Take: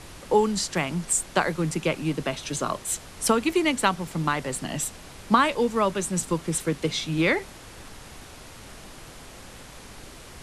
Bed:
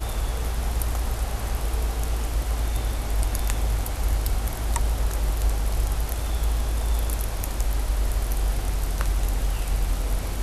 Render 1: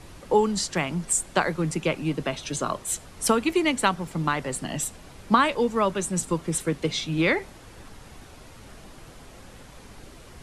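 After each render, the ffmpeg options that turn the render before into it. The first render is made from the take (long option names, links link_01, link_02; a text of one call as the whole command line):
ffmpeg -i in.wav -af "afftdn=noise_reduction=6:noise_floor=-45" out.wav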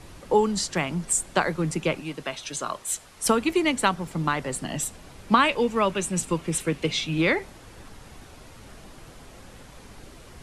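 ffmpeg -i in.wav -filter_complex "[0:a]asettb=1/sr,asplit=3[link_01][link_02][link_03];[link_01]atrim=end=2.004[link_04];[link_02]atrim=start=2:end=3.26,asetpts=PTS-STARTPTS,afade=type=in:duration=0.004:curve=qsin,afade=type=out:start_time=1.256:duration=0.004:curve=qsin,lowshelf=frequency=490:gain=-10.5[link_05];[link_03]atrim=start=3.256[link_06];[link_04][link_05]acrossfade=duration=0.004:curve1=hsin:curve2=qsin[link_07];[link_07][link_06]acrossfade=duration=0.004:curve1=qsin:curve2=hsin,asettb=1/sr,asplit=3[link_08][link_09][link_10];[link_08]atrim=end=5.294[link_11];[link_09]atrim=start=5.29:end=7.18,asetpts=PTS-STARTPTS,afade=type=in:duration=0.004:curve=qsin,afade=type=out:start_time=1.886:duration=0.004:curve=qsin,equalizer=frequency=2600:width_type=o:width=0.54:gain=7[link_12];[link_10]atrim=start=7.176[link_13];[link_11][link_12]acrossfade=duration=0.004:curve1=hsin:curve2=qsin[link_14];[link_14][link_13]acrossfade=duration=0.004:curve1=qsin:curve2=hsin" out.wav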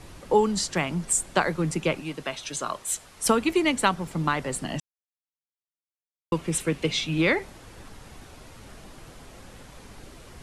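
ffmpeg -i in.wav -filter_complex "[0:a]asplit=3[link_01][link_02][link_03];[link_01]atrim=end=4.8,asetpts=PTS-STARTPTS,afade=type=out:start_time=4.796:duration=0.004:curve=hsin[link_04];[link_02]atrim=start=4.8:end=6.32,asetpts=PTS-STARTPTS,volume=0[link_05];[link_03]atrim=start=6.32,asetpts=PTS-STARTPTS,afade=type=in:duration=0.004:curve=hsin[link_06];[link_04][link_05][link_06]concat=n=3:v=0:a=1" out.wav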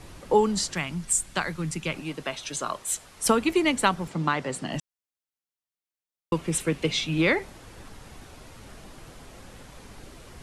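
ffmpeg -i in.wav -filter_complex "[0:a]asettb=1/sr,asplit=3[link_01][link_02][link_03];[link_01]atrim=end=0.744[link_04];[link_02]atrim=start=0.74:end=1.95,asetpts=PTS-STARTPTS,afade=type=in:duration=0.004:curve=qsin,afade=type=out:start_time=1.206:duration=0.004:curve=qsin,equalizer=frequency=500:width=0.56:gain=-9.5[link_05];[link_03]atrim=start=1.946[link_06];[link_04][link_05]acrossfade=duration=0.004:curve1=hsin:curve2=qsin[link_07];[link_07][link_06]acrossfade=duration=0.004:curve1=qsin:curve2=hsin,asettb=1/sr,asplit=3[link_08][link_09][link_10];[link_08]atrim=end=4.084[link_11];[link_09]atrim=start=4.08:end=4.73,asetpts=PTS-STARTPTS,afade=type=in:duration=0.004:curve=qsin,afade=type=out:start_time=0.646:duration=0.004:curve=qsin,highpass=110,lowpass=7500[link_12];[link_10]atrim=start=4.726[link_13];[link_11][link_12]acrossfade=duration=0.004:curve1=hsin:curve2=qsin[link_14];[link_14][link_13]acrossfade=duration=0.004:curve1=qsin:curve2=hsin" out.wav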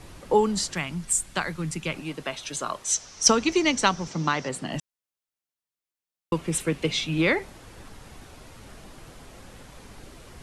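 ffmpeg -i in.wav -filter_complex "[0:a]asettb=1/sr,asplit=3[link_01][link_02][link_03];[link_01]atrim=end=2.844[link_04];[link_02]atrim=start=2.84:end=4.49,asetpts=PTS-STARTPTS,afade=type=in:duration=0.004:curve=qsin,afade=type=out:start_time=1.646:duration=0.004:curve=qsin,lowpass=frequency=5900:width_type=q:width=7.2[link_05];[link_03]atrim=start=4.486[link_06];[link_04][link_05]acrossfade=duration=0.004:curve1=hsin:curve2=qsin[link_07];[link_07][link_06]acrossfade=duration=0.004:curve1=qsin:curve2=hsin" out.wav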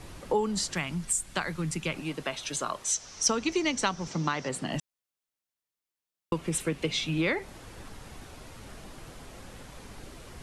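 ffmpeg -i in.wav -af "acompressor=threshold=-28dB:ratio=2" out.wav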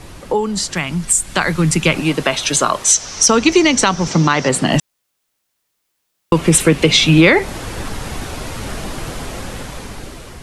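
ffmpeg -i in.wav -af "dynaudnorm=framelen=370:gausssize=7:maxgain=11dB,alimiter=level_in=9dB:limit=-1dB:release=50:level=0:latency=1" out.wav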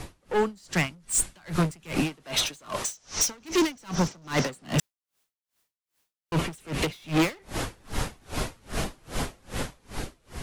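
ffmpeg -i in.wav -af "asoftclip=type=hard:threshold=-18dB,aeval=exprs='val(0)*pow(10,-33*(0.5-0.5*cos(2*PI*2.5*n/s))/20)':channel_layout=same" out.wav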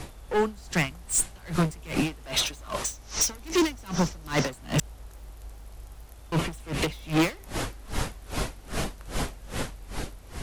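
ffmpeg -i in.wav -i bed.wav -filter_complex "[1:a]volume=-20dB[link_01];[0:a][link_01]amix=inputs=2:normalize=0" out.wav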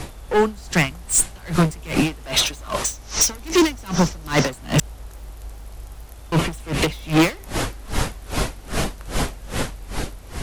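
ffmpeg -i in.wav -af "volume=7dB" out.wav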